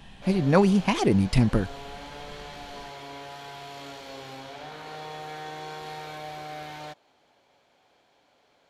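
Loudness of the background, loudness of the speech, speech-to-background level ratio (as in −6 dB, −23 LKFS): −40.0 LKFS, −22.5 LKFS, 17.5 dB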